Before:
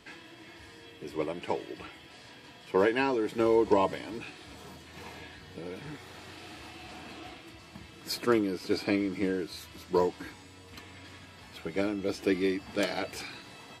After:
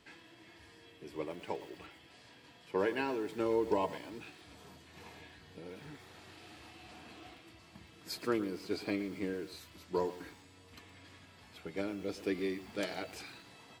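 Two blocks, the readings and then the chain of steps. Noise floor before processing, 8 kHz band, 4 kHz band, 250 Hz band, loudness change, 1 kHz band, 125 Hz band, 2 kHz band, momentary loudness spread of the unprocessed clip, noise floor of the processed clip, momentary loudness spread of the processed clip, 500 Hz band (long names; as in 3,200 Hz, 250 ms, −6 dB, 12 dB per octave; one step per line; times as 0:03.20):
−52 dBFS, −7.0 dB, −7.5 dB, −7.5 dB, −7.5 dB, −7.5 dB, −7.5 dB, −7.5 dB, 22 LU, −59 dBFS, 22 LU, −7.5 dB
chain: feedback echo at a low word length 115 ms, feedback 35%, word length 7 bits, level −14 dB
level −7.5 dB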